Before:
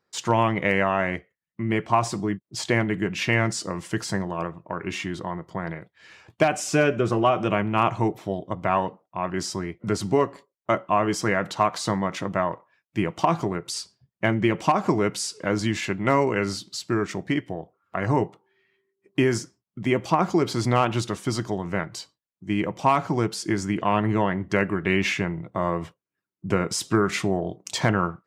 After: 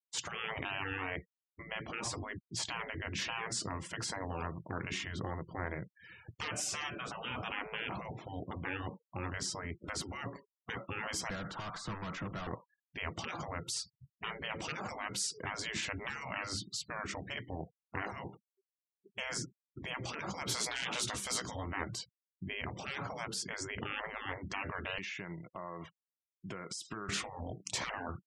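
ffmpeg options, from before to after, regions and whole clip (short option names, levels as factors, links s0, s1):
-filter_complex "[0:a]asettb=1/sr,asplit=3[s0][s1][s2];[s0]atrim=end=11.304[s3];[s1]atrim=start=11.3:end=12.47,asetpts=PTS-STARTPTS,afade=t=in:d=0.004:c=qsin,afade=t=out:st=1.166:d=0.004:c=qsin,equalizer=f=1400:w=2.1:g=8,acrossover=split=180|760|1700[s4][s5][s6][s7];[s4]acompressor=threshold=0.00794:ratio=3[s8];[s5]acompressor=threshold=0.0282:ratio=3[s9];[s6]acompressor=threshold=0.0794:ratio=3[s10];[s7]acompressor=threshold=0.01:ratio=3[s11];[s8][s9][s10][s11]amix=inputs=4:normalize=0,aeval=exprs='(tanh(50.1*val(0)+0.05)-tanh(0.05))/50.1':c=same[s12];[s2]atrim=start=12.466[s13];[s3][s12]acrossfade=d=0.004:c1=hsin:c2=qsin[s14];[s14][s13]acrossfade=d=0.004:c1=qsin:c2=hsin,asettb=1/sr,asplit=3[s15][s16][s17];[s15]atrim=end=20.494[s18];[s16]atrim=start=20.49:end=21.66,asetpts=PTS-STARTPTS,afade=t=in:d=0.004:c=qsin,afade=t=out:st=1.166:d=0.004:c=qsin,highshelf=f=2900:g=8.5,asplit=2[s19][s20];[s20]adelay=16,volume=0.422[s21];[s19][s21]amix=inputs=2:normalize=0,atrim=end_sample=51597[s22];[s17]atrim=start=21.656[s23];[s18][s22]acrossfade=d=0.004:c1=hsin:c2=qsin[s24];[s24][s23]acrossfade=d=0.004:c1=qsin:c2=hsin,asettb=1/sr,asplit=3[s25][s26][s27];[s25]atrim=end=24.984[s28];[s26]atrim=start=24.98:end=27.09,asetpts=PTS-STARTPTS,afade=t=in:d=0.004:c=qsin,afade=t=out:st=2.106:d=0.004:c=qsin,highpass=f=940:p=1,acompressor=threshold=0.0224:ratio=10:attack=3.2:release=140:knee=1:detection=peak,asoftclip=type=hard:threshold=0.0376[s29];[s27]atrim=start=27.086[s30];[s28][s29]acrossfade=d=0.004:c1=hsin:c2=qsin[s31];[s31][s30]acrossfade=d=0.004:c1=qsin:c2=hsin,afftfilt=real='re*lt(hypot(re,im),0.112)':imag='im*lt(hypot(re,im),0.112)':win_size=1024:overlap=0.75,bass=f=250:g=8,treble=f=4000:g=-1,afftfilt=real='re*gte(hypot(re,im),0.00501)':imag='im*gte(hypot(re,im),0.00501)':win_size=1024:overlap=0.75,volume=0.596"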